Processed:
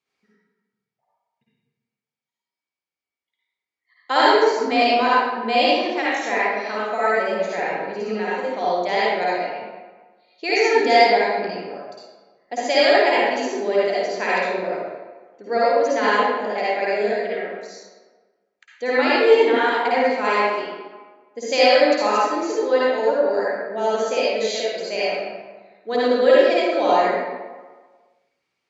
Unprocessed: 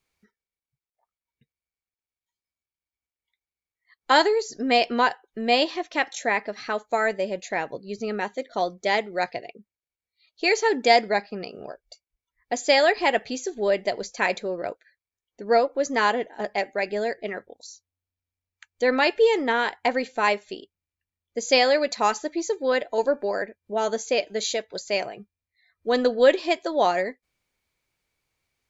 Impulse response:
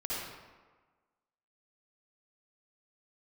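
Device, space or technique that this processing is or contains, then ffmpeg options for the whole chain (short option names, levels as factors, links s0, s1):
supermarket ceiling speaker: -filter_complex "[0:a]highpass=200,lowpass=6400[s0];[1:a]atrim=start_sample=2205[s1];[s0][s1]afir=irnorm=-1:irlink=0"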